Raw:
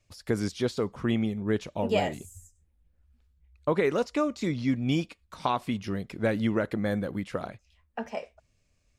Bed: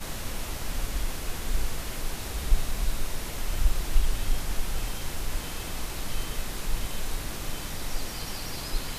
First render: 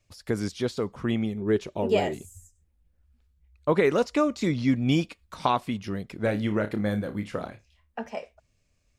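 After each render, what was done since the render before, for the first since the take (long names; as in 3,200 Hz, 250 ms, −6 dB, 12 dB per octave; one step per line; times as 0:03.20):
0:01.35–0:02.19: parametric band 380 Hz +11.5 dB 0.31 octaves
0:03.69–0:05.60: clip gain +3.5 dB
0:06.23–0:08.01: flutter between parallel walls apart 4.9 metres, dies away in 0.2 s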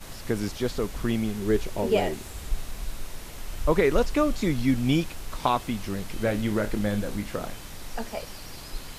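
mix in bed −6 dB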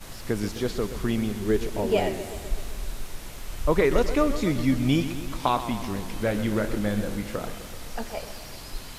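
feedback echo with a swinging delay time 128 ms, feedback 67%, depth 106 cents, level −12 dB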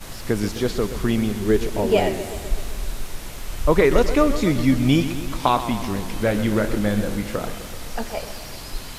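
level +5 dB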